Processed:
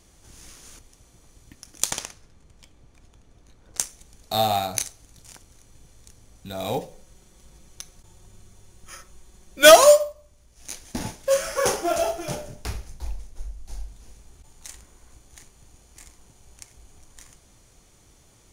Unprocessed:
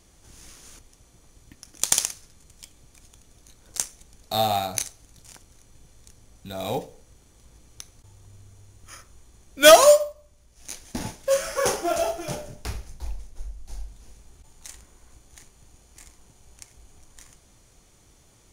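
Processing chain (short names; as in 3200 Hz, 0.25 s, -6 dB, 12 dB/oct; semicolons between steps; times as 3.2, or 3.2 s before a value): 1.91–3.79 LPF 1800 Hz 6 dB/oct; 6.82–9.66 comb 5.4 ms, depth 57%; gain +1 dB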